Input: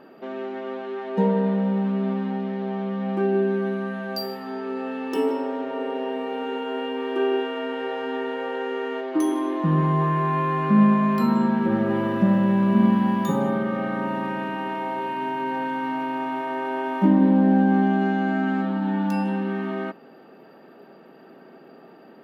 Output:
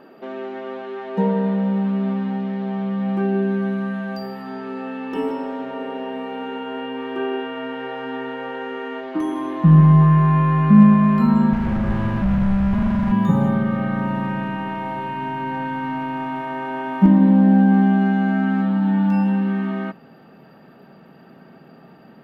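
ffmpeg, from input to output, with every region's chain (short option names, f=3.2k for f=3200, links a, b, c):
-filter_complex "[0:a]asettb=1/sr,asplit=3[a][b][c];[a]atrim=end=11.534[d];[b]atrim=start=11.53:end=13.12,asetpts=PTS-STARTPTS,afade=t=in:d=0.004:c=qsin,afade=t=out:st=1.586:d=0.004:c=qsin,asoftclip=type=hard:threshold=-24.5dB,asplit=2[e][f];[f]adelay=14,volume=-13dB[g];[e][g]amix=inputs=2:normalize=0,atrim=end_sample=70119[h];[c]atrim=start=13.116[i];[d][h]acrossfade=d=0.004:c1=hsin:c2=qsin[j];[j][i]acrossfade=d=0.004:c1=qsin:c2=hsin,acrossover=split=3100[k][l];[l]acompressor=threshold=-55dB:ratio=4:attack=1:release=60[m];[k][m]amix=inputs=2:normalize=0,asubboost=boost=10.5:cutoff=110,volume=2dB"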